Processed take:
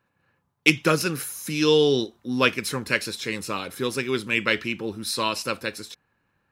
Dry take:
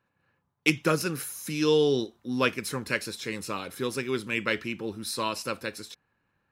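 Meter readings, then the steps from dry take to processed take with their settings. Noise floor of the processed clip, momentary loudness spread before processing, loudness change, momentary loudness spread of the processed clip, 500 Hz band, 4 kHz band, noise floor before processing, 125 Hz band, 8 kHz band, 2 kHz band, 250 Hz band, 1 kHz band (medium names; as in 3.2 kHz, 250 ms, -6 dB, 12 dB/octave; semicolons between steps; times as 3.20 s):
-73 dBFS, 10 LU, +4.5 dB, 11 LU, +3.5 dB, +7.0 dB, -76 dBFS, +3.5 dB, +4.0 dB, +6.0 dB, +3.5 dB, +4.0 dB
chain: dynamic bell 3.3 kHz, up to +4 dB, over -39 dBFS, Q 0.88; trim +3.5 dB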